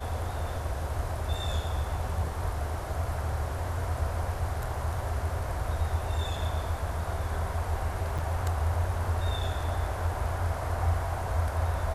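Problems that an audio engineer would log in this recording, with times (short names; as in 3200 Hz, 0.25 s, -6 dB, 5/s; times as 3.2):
8.18–8.19 gap 6.2 ms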